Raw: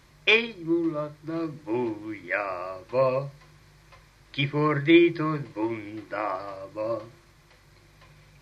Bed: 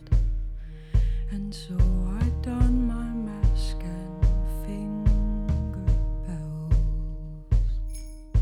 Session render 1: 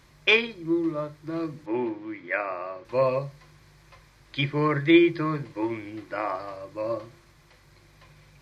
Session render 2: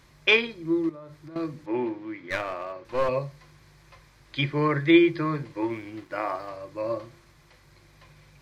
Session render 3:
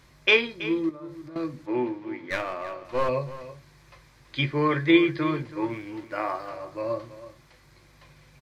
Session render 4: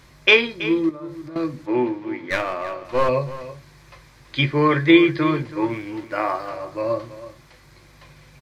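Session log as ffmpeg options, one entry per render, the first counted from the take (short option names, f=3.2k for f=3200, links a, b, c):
-filter_complex "[0:a]asettb=1/sr,asplit=3[a][b][c];[a]atrim=end=1.664[d];[b]atrim=start=1.66:end=2.85,asetpts=PTS-STARTPTS,afade=t=in:d=0.004:c=qsin,afade=t=out:st=1.186:d=0.004:c=qsin,highpass=150,lowpass=3.4k[e];[c]atrim=start=2.846[f];[d][e]acrossfade=d=0.004:c1=hsin:c2=qsin[g];[g][f]acrossfade=d=0.004:c1=qsin:c2=hsin"
-filter_complex "[0:a]asettb=1/sr,asplit=3[a][b][c];[a]atrim=end=0.894[d];[b]atrim=start=0.89:end=1.36,asetpts=PTS-STARTPTS,afade=t=in:d=0.004:c=qsin,afade=t=out:st=0.466:d=0.004:c=qsin,acompressor=threshold=-39dB:ratio=16:attack=3.2:release=140:knee=1:detection=peak[e];[c]atrim=start=1.356[f];[d][e]acrossfade=d=0.004:c1=hsin:c2=qsin[g];[g][f]acrossfade=d=0.004:c1=qsin:c2=hsin,asettb=1/sr,asplit=3[h][i][j];[h]atrim=end=2.174[k];[i]atrim=start=2.17:end=3.09,asetpts=PTS-STARTPTS,afade=t=in:d=0.004:c=qsin,afade=t=out:st=0.916:d=0.004:c=qsin,aeval=exprs='clip(val(0),-1,0.0266)':c=same[l];[j]atrim=start=3.086[m];[k][l]acrossfade=d=0.004:c1=hsin:c2=qsin[n];[n][m]acrossfade=d=0.004:c1=qsin:c2=hsin,asettb=1/sr,asplit=3[o][p][q];[o]atrim=end=5.704[r];[p]atrim=start=5.7:end=6.49,asetpts=PTS-STARTPTS,afade=t=in:d=0.004:c=qsin,afade=t=out:st=0.786:d=0.004:c=qsin,aeval=exprs='sgn(val(0))*max(abs(val(0))-0.00178,0)':c=same[s];[q]atrim=start=6.486[t];[r][s]acrossfade=d=0.004:c1=hsin:c2=qsin[u];[u][t]acrossfade=d=0.004:c1=qsin:c2=hsin"
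-filter_complex "[0:a]asplit=2[a][b];[b]adelay=16,volume=-11dB[c];[a][c]amix=inputs=2:normalize=0,aecho=1:1:327:0.178"
-af "volume=6dB,alimiter=limit=-2dB:level=0:latency=1"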